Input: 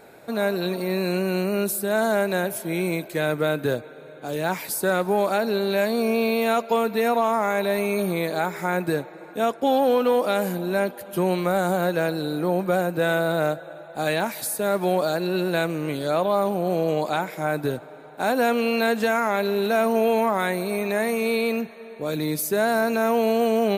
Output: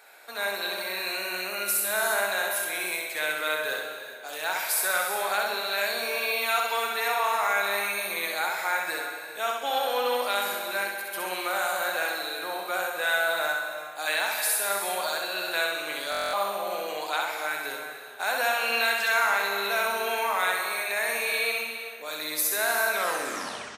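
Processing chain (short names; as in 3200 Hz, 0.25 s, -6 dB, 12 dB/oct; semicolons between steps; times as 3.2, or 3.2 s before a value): tape stop at the end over 0.91 s; HPF 1200 Hz 12 dB/oct; on a send: feedback echo 65 ms, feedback 44%, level -3.5 dB; on the sum: non-linear reverb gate 0.44 s flat, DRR 5 dB; stuck buffer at 16.1, samples 1024, times 9; gain +1 dB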